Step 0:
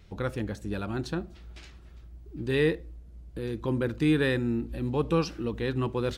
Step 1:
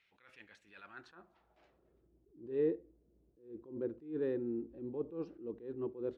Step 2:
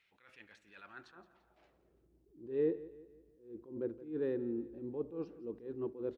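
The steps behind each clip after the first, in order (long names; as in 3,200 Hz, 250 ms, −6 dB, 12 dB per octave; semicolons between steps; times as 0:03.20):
band-pass filter sweep 2,300 Hz → 380 Hz, 0:00.69–0:02.02; level that may rise only so fast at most 140 dB per second; level −4 dB
repeating echo 170 ms, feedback 44%, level −17 dB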